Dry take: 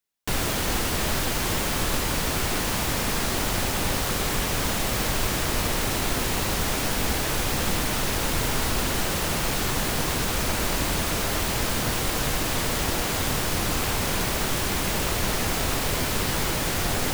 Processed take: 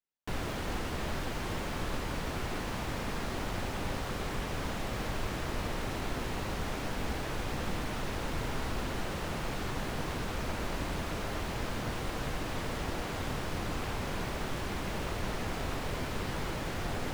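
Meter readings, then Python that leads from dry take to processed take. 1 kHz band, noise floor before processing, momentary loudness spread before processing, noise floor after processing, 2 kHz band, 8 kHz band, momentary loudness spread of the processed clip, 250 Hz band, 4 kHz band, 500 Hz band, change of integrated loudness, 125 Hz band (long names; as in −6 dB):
−9.0 dB, −27 dBFS, 0 LU, −37 dBFS, −10.5 dB, −19.0 dB, 0 LU, −8.0 dB, −14.0 dB, −8.5 dB, −11.5 dB, −8.0 dB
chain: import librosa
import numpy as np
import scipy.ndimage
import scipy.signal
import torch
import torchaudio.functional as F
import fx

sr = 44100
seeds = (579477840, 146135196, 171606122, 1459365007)

y = fx.lowpass(x, sr, hz=2100.0, slope=6)
y = y * librosa.db_to_amplitude(-8.0)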